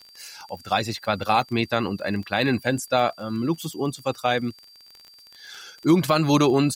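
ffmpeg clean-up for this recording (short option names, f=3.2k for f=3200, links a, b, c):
-af "adeclick=t=4,bandreject=f=4.7k:w=30,agate=range=-21dB:threshold=-42dB"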